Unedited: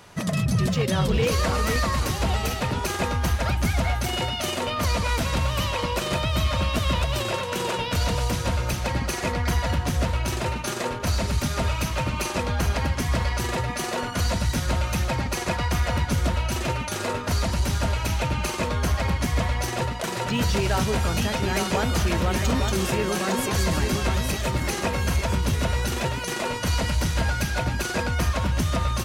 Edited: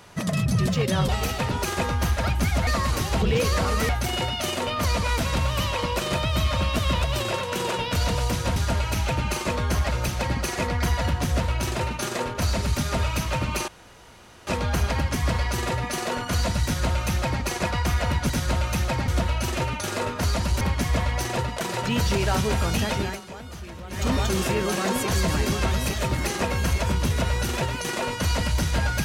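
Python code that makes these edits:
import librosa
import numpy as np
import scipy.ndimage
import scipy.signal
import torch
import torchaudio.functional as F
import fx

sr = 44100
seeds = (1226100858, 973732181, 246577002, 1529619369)

y = fx.edit(x, sr, fx.swap(start_s=1.09, length_s=0.67, other_s=2.31, other_length_s=1.58),
    fx.insert_room_tone(at_s=12.33, length_s=0.79),
    fx.duplicate(start_s=14.5, length_s=0.78, to_s=16.16),
    fx.move(start_s=17.69, length_s=1.35, to_s=8.56),
    fx.fade_down_up(start_s=21.41, length_s=1.12, db=-15.5, fade_s=0.21), tone=tone)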